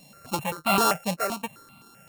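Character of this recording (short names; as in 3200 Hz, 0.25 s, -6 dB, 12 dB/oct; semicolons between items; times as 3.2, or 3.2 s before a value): a buzz of ramps at a fixed pitch in blocks of 32 samples; random-step tremolo 4.3 Hz; notches that jump at a steady rate 7.7 Hz 370–1700 Hz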